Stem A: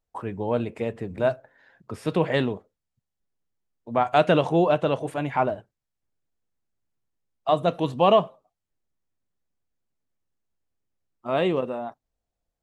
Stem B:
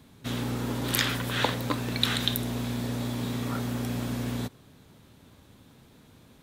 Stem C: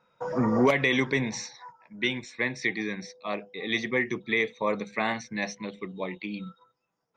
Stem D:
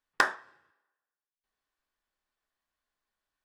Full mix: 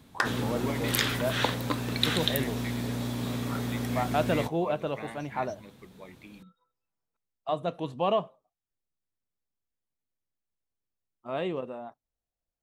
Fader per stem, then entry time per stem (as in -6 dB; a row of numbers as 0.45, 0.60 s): -8.5, -1.0, -14.5, -3.5 dB; 0.00, 0.00, 0.00, 0.00 s